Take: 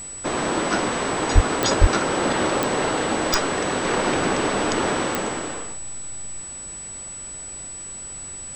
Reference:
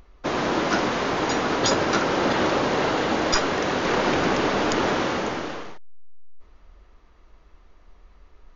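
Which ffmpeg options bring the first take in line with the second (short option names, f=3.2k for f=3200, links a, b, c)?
-filter_complex "[0:a]adeclick=t=4,bandreject=f=7.9k:w=30,asplit=3[a][b][c];[a]afade=t=out:st=1.34:d=0.02[d];[b]highpass=f=140:w=0.5412,highpass=f=140:w=1.3066,afade=t=in:st=1.34:d=0.02,afade=t=out:st=1.46:d=0.02[e];[c]afade=t=in:st=1.46:d=0.02[f];[d][e][f]amix=inputs=3:normalize=0,asplit=3[g][h][i];[g]afade=t=out:st=1.8:d=0.02[j];[h]highpass=f=140:w=0.5412,highpass=f=140:w=1.3066,afade=t=in:st=1.8:d=0.02,afade=t=out:st=1.92:d=0.02[k];[i]afade=t=in:st=1.92:d=0.02[l];[j][k][l]amix=inputs=3:normalize=0,afftdn=nr=16:nf=-35"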